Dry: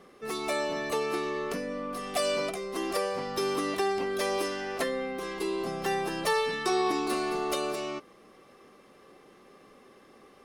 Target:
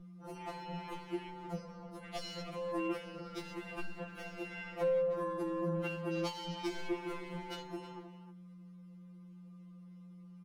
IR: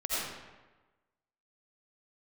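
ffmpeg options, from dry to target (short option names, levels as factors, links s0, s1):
-filter_complex "[0:a]bandreject=f=1700:w=7.1,afwtdn=0.0126,aeval=exprs='val(0)+0.00447*(sin(2*PI*60*n/s)+sin(2*PI*2*60*n/s)/2+sin(2*PI*3*60*n/s)/3+sin(2*PI*4*60*n/s)/4+sin(2*PI*5*60*n/s)/5)':c=same,asoftclip=type=hard:threshold=0.0501,asettb=1/sr,asplit=3[s0][s1][s2];[s0]atrim=end=5.814[s3];[s1]atrim=start=5.81:end=6.47,asetpts=PTS-STARTPTS,afade=t=in:d=0.004:c=qsin,afade=t=out:st=0.656:d=0.004:c=qsin,highpass=180[s4];[s2]atrim=start=6.466[s5];[s3][s4]acrossfade=d=0.004:c1=hsin:c2=qsin[s6];[s6][s5]acrossfade=d=0.004:c1=qsin:c2=hsin,asplit=2[s7][s8];[s8]adelay=310,highpass=300,lowpass=3400,asoftclip=type=hard:threshold=0.0299,volume=0.224[s9];[s7][s9]amix=inputs=2:normalize=0,acrossover=split=350[s10][s11];[s11]acompressor=threshold=0.0141:ratio=6[s12];[s10][s12]amix=inputs=2:normalize=0,afftfilt=real='re*2.83*eq(mod(b,8),0)':imag='im*2.83*eq(mod(b,8),0)':win_size=2048:overlap=0.75,volume=1.26"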